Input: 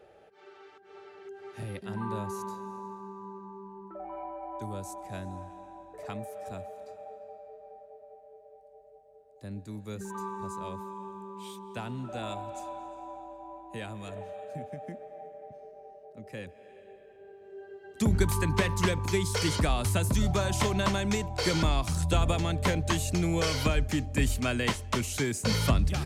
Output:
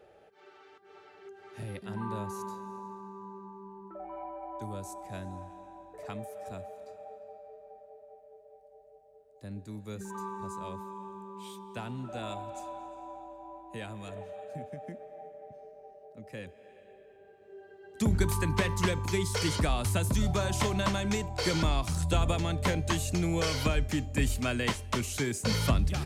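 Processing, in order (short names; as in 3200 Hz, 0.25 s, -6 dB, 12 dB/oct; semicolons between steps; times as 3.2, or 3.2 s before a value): de-hum 395.1 Hz, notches 36; gain -1.5 dB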